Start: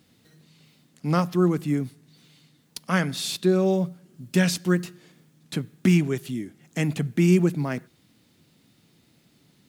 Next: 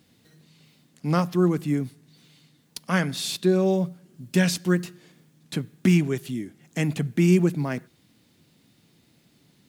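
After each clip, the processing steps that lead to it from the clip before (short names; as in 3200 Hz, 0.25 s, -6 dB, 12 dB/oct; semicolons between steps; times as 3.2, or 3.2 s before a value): notch 1300 Hz, Q 28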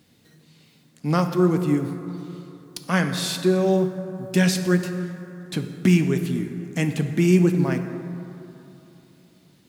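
plate-style reverb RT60 3.1 s, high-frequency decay 0.4×, DRR 6.5 dB; gain +1.5 dB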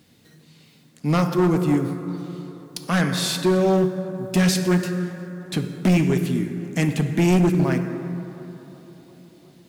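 hard clip -16 dBFS, distortion -12 dB; tape echo 0.358 s, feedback 80%, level -19 dB, low-pass 1800 Hz; gain +2.5 dB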